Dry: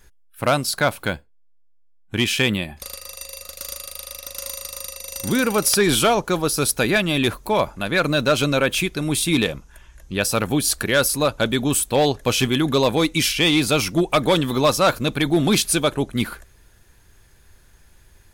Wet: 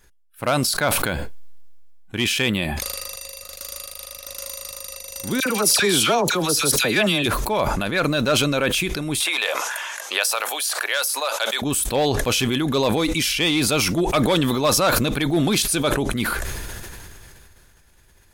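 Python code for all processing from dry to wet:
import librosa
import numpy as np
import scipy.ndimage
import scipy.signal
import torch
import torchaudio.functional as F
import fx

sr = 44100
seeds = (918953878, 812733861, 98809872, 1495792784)

y = fx.chain(x, sr, fx.highpass(hz=90.0, slope=12),
    fx.peak_eq(hz=5700.0, db=4.0, octaves=2.5),
    fx.dispersion(late='lows', ms=58.0, hz=1400.0), at=(5.4, 7.26))
y = fx.chain(y, sr, fx.highpass(hz=620.0, slope=24),
    fx.band_squash(depth_pct=100), at=(9.2, 11.62))
y = fx.low_shelf(y, sr, hz=170.0, db=-3.5)
y = fx.sustainer(y, sr, db_per_s=21.0)
y = y * librosa.db_to_amplitude(-2.5)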